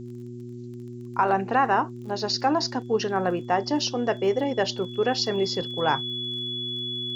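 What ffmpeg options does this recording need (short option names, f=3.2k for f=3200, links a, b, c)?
-af "adeclick=t=4,bandreject=f=121:t=h:w=4,bandreject=f=242:t=h:w=4,bandreject=f=363:t=h:w=4,bandreject=f=3.4k:w=30,agate=range=-21dB:threshold=-30dB"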